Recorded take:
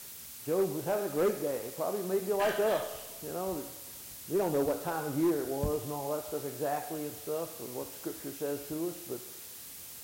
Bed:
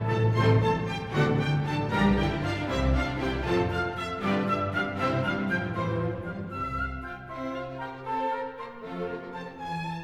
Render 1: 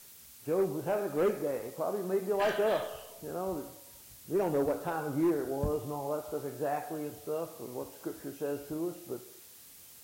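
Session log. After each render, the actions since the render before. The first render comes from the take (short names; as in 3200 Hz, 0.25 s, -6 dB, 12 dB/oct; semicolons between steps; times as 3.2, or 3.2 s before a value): noise print and reduce 7 dB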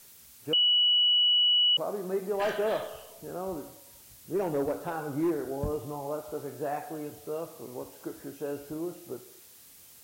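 0.53–1.77 bleep 2940 Hz -20 dBFS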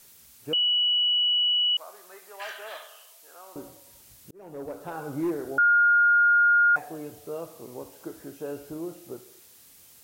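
1.52–3.56 HPF 1300 Hz; 4.31–5.08 fade in; 5.58–6.76 bleep 1420 Hz -16 dBFS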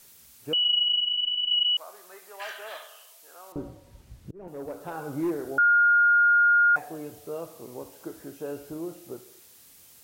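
0.64–1.65 monotone LPC vocoder at 8 kHz 290 Hz; 3.52–4.48 RIAA curve playback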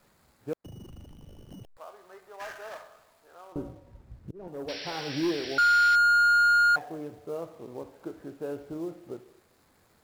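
median filter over 15 samples; 4.68–5.96 painted sound noise 1500–5800 Hz -40 dBFS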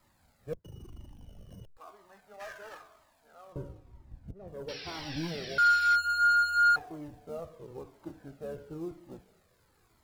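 octaver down 1 oct, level -4 dB; cascading flanger falling 1 Hz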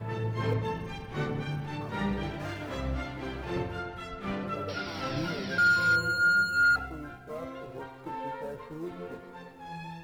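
add bed -8 dB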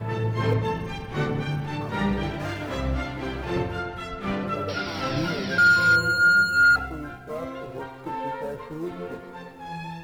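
gain +6 dB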